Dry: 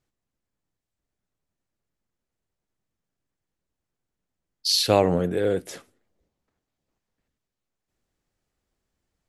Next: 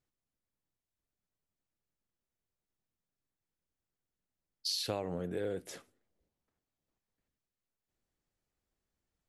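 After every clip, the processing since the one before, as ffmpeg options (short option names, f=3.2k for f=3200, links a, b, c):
-af "acompressor=threshold=-24dB:ratio=6,volume=-8dB"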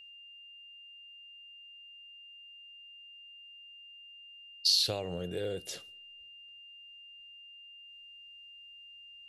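-af "equalizer=f=250:t=o:w=1:g=-9,equalizer=f=1k:t=o:w=1:g=-7,equalizer=f=2k:t=o:w=1:g=-5,equalizer=f=4k:t=o:w=1:g=7,aeval=exprs='val(0)+0.002*sin(2*PI*2800*n/s)':c=same,volume=4.5dB"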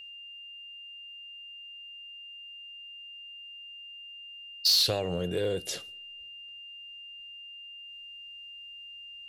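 -af "asoftclip=type=tanh:threshold=-23.5dB,volume=6.5dB"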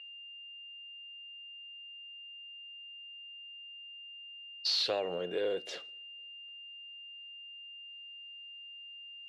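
-af "highpass=380,lowpass=3.2k,volume=-1dB"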